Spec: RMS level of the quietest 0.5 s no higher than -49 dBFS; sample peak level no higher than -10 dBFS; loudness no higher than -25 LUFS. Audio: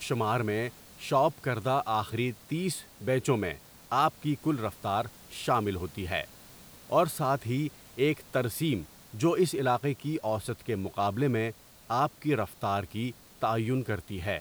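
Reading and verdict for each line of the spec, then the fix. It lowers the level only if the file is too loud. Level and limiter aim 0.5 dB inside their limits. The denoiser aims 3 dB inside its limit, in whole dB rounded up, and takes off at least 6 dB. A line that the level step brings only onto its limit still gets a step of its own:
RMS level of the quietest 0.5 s -52 dBFS: pass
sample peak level -12.0 dBFS: pass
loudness -30.5 LUFS: pass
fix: none needed

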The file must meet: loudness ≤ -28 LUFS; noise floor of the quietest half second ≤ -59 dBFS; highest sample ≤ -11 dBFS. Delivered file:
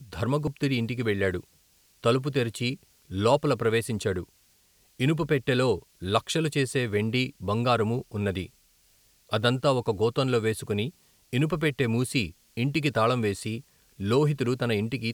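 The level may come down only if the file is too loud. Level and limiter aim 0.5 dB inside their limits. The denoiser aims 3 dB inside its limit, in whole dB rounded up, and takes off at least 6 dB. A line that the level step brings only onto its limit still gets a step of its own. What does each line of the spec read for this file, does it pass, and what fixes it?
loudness -27.0 LUFS: fail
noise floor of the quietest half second -63 dBFS: pass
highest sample -6.5 dBFS: fail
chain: trim -1.5 dB; peak limiter -11.5 dBFS

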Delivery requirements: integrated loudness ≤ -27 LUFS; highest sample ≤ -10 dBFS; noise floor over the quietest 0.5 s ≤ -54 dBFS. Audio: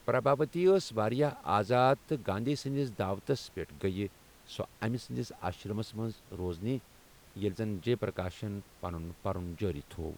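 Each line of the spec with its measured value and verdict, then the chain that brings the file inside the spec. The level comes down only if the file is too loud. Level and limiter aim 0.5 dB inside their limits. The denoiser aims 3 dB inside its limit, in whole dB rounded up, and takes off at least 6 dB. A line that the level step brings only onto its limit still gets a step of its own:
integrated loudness -33.5 LUFS: pass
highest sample -14.0 dBFS: pass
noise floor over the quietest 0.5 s -58 dBFS: pass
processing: none needed

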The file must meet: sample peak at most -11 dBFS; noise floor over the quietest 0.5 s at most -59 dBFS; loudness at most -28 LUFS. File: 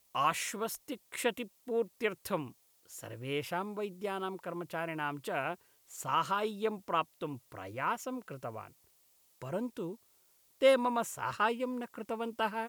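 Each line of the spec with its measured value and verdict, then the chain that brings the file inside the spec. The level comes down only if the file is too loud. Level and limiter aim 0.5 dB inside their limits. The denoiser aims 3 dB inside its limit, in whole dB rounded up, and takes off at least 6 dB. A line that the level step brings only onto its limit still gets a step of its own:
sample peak -14.5 dBFS: pass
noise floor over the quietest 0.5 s -68 dBFS: pass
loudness -35.0 LUFS: pass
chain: none needed

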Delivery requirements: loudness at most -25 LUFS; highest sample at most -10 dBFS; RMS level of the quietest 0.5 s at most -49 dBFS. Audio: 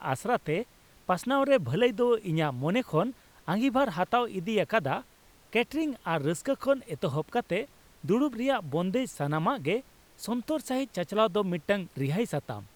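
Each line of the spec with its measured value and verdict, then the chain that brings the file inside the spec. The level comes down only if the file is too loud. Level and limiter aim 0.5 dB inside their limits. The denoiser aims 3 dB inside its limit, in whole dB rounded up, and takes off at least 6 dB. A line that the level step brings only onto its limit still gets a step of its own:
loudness -29.0 LUFS: pass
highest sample -12.0 dBFS: pass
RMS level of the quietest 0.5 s -58 dBFS: pass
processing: none needed

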